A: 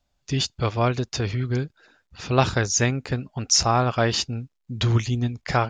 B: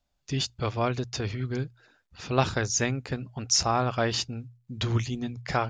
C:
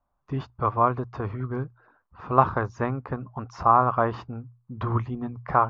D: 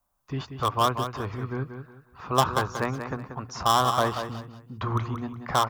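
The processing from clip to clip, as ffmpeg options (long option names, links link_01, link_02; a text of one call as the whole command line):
ffmpeg -i in.wav -af "bandreject=frequency=60:width_type=h:width=6,bandreject=frequency=120:width_type=h:width=6,volume=-4.5dB" out.wav
ffmpeg -i in.wav -af "lowpass=frequency=1100:width_type=q:width=4.9" out.wav
ffmpeg -i in.wav -filter_complex "[0:a]acrossover=split=530|770[link_01][link_02][link_03];[link_03]asoftclip=type=hard:threshold=-22.5dB[link_04];[link_01][link_02][link_04]amix=inputs=3:normalize=0,aecho=1:1:184|368|552:0.376|0.105|0.0295,crystalizer=i=5.5:c=0,volume=-2.5dB" out.wav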